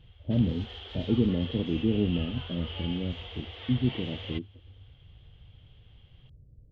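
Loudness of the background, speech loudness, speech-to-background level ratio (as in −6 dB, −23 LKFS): −41.5 LKFS, −30.5 LKFS, 11.0 dB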